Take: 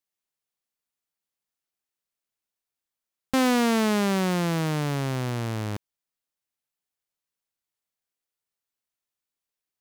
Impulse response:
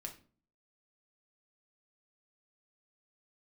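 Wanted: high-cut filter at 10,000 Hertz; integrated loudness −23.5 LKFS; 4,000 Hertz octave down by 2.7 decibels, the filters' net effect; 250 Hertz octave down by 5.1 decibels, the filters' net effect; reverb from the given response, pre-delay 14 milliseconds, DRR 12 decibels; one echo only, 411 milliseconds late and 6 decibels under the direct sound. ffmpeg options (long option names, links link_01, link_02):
-filter_complex "[0:a]lowpass=10000,equalizer=frequency=250:width_type=o:gain=-6.5,equalizer=frequency=4000:width_type=o:gain=-3.5,aecho=1:1:411:0.501,asplit=2[link_01][link_02];[1:a]atrim=start_sample=2205,adelay=14[link_03];[link_02][link_03]afir=irnorm=-1:irlink=0,volume=-8.5dB[link_04];[link_01][link_04]amix=inputs=2:normalize=0,volume=3.5dB"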